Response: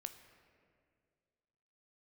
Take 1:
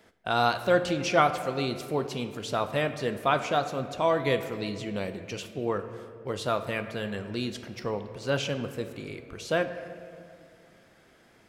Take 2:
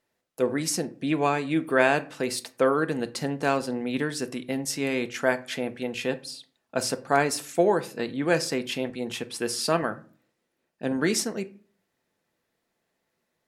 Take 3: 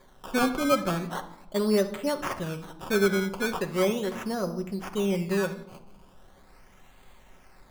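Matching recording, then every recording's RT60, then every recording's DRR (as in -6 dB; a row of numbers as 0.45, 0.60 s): 1; 2.1, 0.45, 0.90 s; 8.0, 9.0, 6.0 dB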